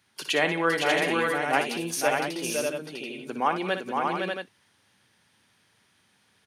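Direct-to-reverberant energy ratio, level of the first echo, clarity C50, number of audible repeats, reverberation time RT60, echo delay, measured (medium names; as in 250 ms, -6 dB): no reverb, -9.0 dB, no reverb, 5, no reverb, 60 ms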